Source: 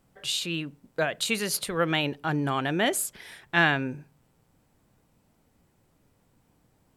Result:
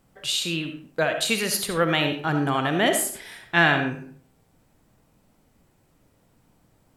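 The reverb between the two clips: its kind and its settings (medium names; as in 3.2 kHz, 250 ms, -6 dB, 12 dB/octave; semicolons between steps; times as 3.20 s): algorithmic reverb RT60 0.49 s, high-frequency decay 0.7×, pre-delay 25 ms, DRR 5.5 dB; trim +3 dB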